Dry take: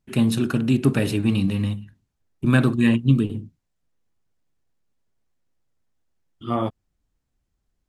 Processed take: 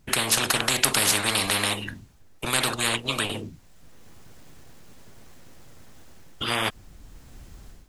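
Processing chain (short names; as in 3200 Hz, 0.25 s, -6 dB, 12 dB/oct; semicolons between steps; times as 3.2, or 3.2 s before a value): AGC gain up to 14 dB; spectral compressor 10:1; gain -1 dB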